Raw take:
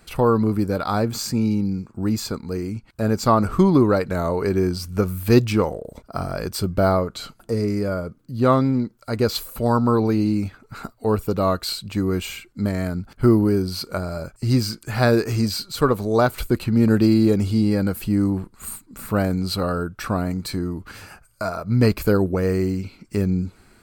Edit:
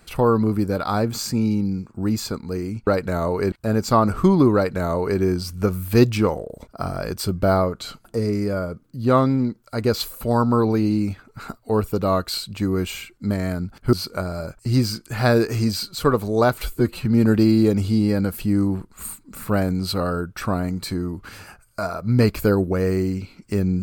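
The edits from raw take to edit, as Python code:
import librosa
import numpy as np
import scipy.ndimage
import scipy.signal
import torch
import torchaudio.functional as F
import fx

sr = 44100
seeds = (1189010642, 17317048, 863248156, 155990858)

y = fx.edit(x, sr, fx.duplicate(start_s=3.9, length_s=0.65, to_s=2.87),
    fx.cut(start_s=13.28, length_s=0.42),
    fx.stretch_span(start_s=16.39, length_s=0.29, factor=1.5), tone=tone)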